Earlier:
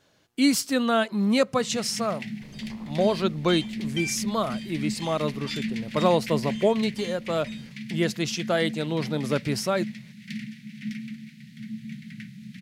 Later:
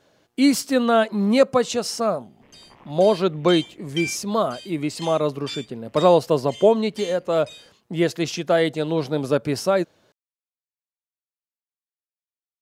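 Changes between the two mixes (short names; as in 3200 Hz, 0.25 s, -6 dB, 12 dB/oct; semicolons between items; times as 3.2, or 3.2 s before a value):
speech: add bell 540 Hz +7 dB 2.2 oct; first sound: muted; second sound: add tilt +2.5 dB/oct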